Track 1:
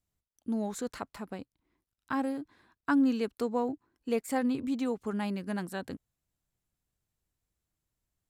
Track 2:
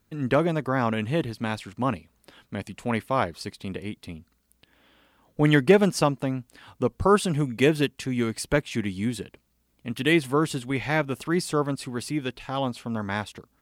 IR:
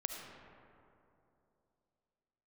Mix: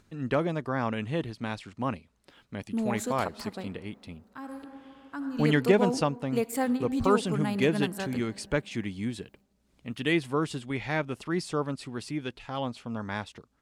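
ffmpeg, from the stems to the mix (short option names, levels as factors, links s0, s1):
-filter_complex "[0:a]highshelf=f=11000:g=8,adelay=2250,volume=1,asplit=2[s0][s1];[s1]volume=0.282[s2];[1:a]lowpass=8200,acompressor=mode=upward:threshold=0.00355:ratio=2.5,volume=0.562,asplit=2[s3][s4];[s4]apad=whole_len=464827[s5];[s0][s5]sidechaingate=range=0.0631:threshold=0.00141:ratio=16:detection=peak[s6];[2:a]atrim=start_sample=2205[s7];[s2][s7]afir=irnorm=-1:irlink=0[s8];[s6][s3][s8]amix=inputs=3:normalize=0"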